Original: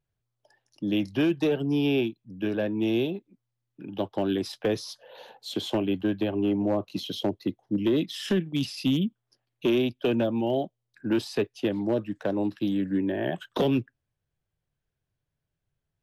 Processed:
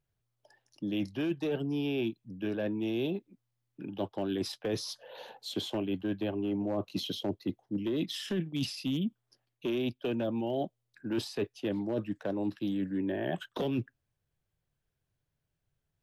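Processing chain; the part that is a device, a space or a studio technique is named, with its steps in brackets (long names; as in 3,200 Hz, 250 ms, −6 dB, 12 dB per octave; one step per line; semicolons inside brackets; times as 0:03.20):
compression on the reversed sound (reversed playback; downward compressor, threshold −29 dBFS, peak gain reduction 9 dB; reversed playback)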